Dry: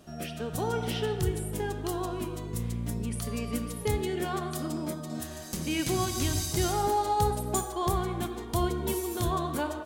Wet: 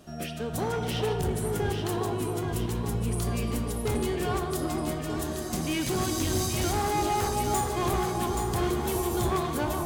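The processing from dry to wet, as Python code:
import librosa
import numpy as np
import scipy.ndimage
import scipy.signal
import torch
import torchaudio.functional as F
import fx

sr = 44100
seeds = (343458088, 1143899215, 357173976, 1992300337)

p1 = np.clip(x, -10.0 ** (-27.5 / 20.0), 10.0 ** (-27.5 / 20.0))
p2 = p1 + fx.echo_alternate(p1, sr, ms=413, hz=1100.0, feedback_pct=74, wet_db=-3.0, dry=0)
y = p2 * 10.0 ** (2.0 / 20.0)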